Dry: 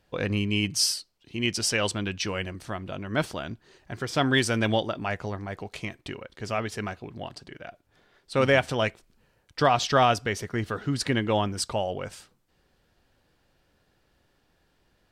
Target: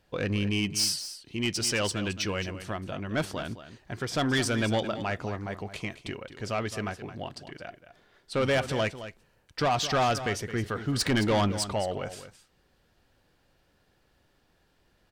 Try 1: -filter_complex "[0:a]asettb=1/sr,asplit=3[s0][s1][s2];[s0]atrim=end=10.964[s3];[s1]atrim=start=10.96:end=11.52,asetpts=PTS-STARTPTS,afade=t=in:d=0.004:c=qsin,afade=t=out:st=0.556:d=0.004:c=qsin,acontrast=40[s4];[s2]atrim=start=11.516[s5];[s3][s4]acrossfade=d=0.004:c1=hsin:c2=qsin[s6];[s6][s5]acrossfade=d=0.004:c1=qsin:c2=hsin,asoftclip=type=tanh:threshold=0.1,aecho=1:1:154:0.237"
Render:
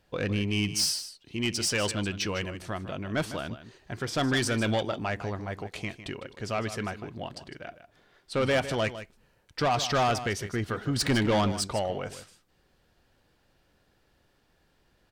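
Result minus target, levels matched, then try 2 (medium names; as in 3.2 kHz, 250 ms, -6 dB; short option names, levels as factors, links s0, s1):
echo 63 ms early
-filter_complex "[0:a]asettb=1/sr,asplit=3[s0][s1][s2];[s0]atrim=end=10.964[s3];[s1]atrim=start=10.96:end=11.52,asetpts=PTS-STARTPTS,afade=t=in:d=0.004:c=qsin,afade=t=out:st=0.556:d=0.004:c=qsin,acontrast=40[s4];[s2]atrim=start=11.516[s5];[s3][s4]acrossfade=d=0.004:c1=hsin:c2=qsin[s6];[s6][s5]acrossfade=d=0.004:c1=qsin:c2=hsin,asoftclip=type=tanh:threshold=0.1,aecho=1:1:217:0.237"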